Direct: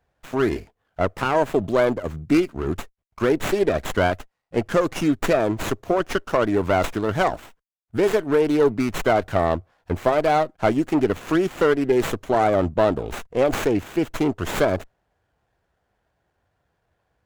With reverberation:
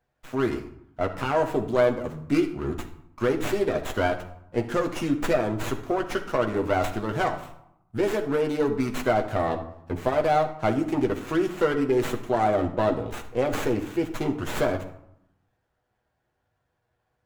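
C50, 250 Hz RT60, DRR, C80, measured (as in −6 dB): 10.5 dB, 0.95 s, 3.0 dB, 13.5 dB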